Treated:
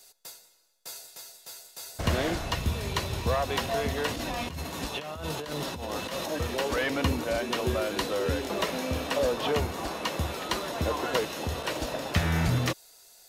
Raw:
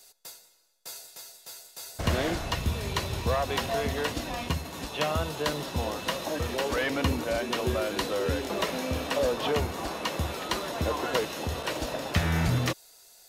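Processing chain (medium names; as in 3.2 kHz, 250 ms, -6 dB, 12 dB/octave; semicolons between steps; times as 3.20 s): 4.08–6.32 s: compressor with a negative ratio -34 dBFS, ratio -1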